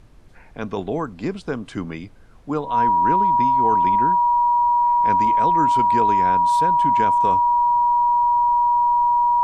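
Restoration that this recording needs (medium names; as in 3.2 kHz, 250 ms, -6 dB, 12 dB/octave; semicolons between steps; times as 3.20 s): band-stop 960 Hz, Q 30; expander -35 dBFS, range -21 dB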